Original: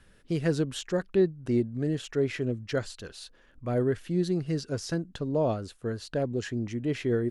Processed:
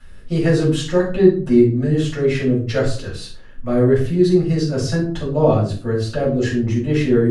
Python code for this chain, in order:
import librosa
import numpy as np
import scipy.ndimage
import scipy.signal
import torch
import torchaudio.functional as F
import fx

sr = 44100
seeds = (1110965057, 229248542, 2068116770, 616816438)

y = fx.room_shoebox(x, sr, seeds[0], volume_m3=320.0, walls='furnished', distance_m=6.7)